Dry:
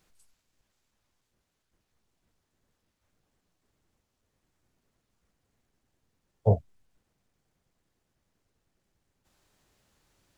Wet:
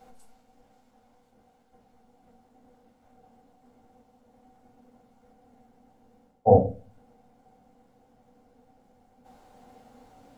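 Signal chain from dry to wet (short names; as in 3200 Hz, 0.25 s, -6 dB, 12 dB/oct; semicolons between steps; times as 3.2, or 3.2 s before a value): bell 760 Hz +7 dB 2.5 oct; reverse; compressor 6:1, threshold -28 dBFS, peak gain reduction 14 dB; reverse; small resonant body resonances 240/500/750 Hz, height 18 dB, ringing for 45 ms; reverb RT60 0.35 s, pre-delay 3 ms, DRR 0.5 dB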